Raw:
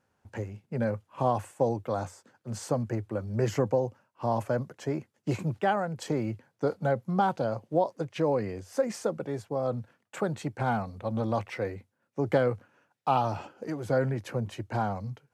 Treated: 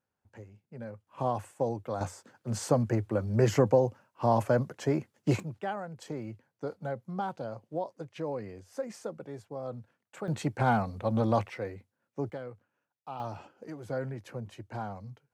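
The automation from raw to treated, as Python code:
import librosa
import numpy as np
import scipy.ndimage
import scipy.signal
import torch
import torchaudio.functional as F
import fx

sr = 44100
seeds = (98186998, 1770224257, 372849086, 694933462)

y = fx.gain(x, sr, db=fx.steps((0.0, -13.0), (1.07, -4.0), (2.01, 3.0), (5.4, -8.5), (10.28, 2.5), (11.49, -4.5), (12.3, -16.0), (13.2, -8.0)))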